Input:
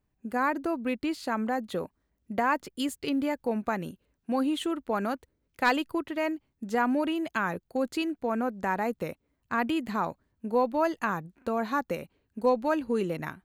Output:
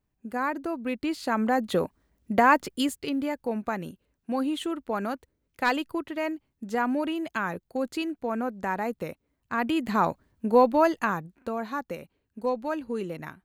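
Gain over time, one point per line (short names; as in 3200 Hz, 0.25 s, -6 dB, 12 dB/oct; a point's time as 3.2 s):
0.77 s -1.5 dB
1.73 s +7 dB
2.68 s +7 dB
3.08 s -0.5 dB
9.53 s -0.5 dB
10.05 s +6.5 dB
10.68 s +6.5 dB
11.68 s -3.5 dB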